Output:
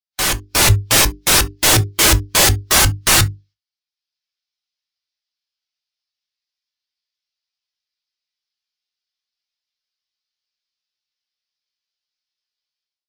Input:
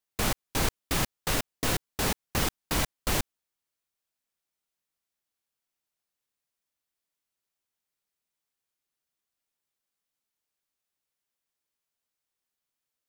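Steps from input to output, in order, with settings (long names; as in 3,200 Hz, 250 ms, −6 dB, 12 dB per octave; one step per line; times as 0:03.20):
high-shelf EQ 3,600 Hz +4.5 dB
mains-hum notches 50/100/150/200/250/300/350/400 Hz
in parallel at −7 dB: wrap-around overflow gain 21 dB
on the sum: drawn EQ curve 100 Hz 0 dB, 160 Hz −10 dB, 5,100 Hz +10 dB, 8,600 Hz −11 dB
sine wavefolder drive 17 dB, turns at −8.5 dBFS
automatic gain control gain up to 9 dB
noise gate −46 dBFS, range −9 dB
on a send at −9.5 dB: convolution reverb, pre-delay 4 ms
on the sum: every bin expanded away from the loudest bin 1.5 to 1
level −2 dB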